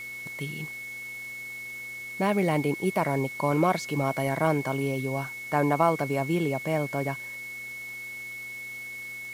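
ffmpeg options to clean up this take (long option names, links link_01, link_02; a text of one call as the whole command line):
ffmpeg -i in.wav -af "adeclick=threshold=4,bandreject=frequency=123.3:width_type=h:width=4,bandreject=frequency=246.6:width_type=h:width=4,bandreject=frequency=369.9:width_type=h:width=4,bandreject=frequency=493.2:width_type=h:width=4,bandreject=frequency=2200:width=30,afwtdn=0.0032" out.wav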